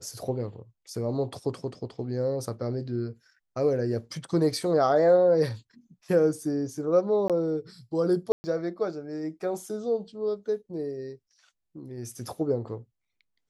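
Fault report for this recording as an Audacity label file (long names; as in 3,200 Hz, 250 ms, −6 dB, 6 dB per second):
7.280000	7.300000	drop-out 17 ms
8.320000	8.440000	drop-out 120 ms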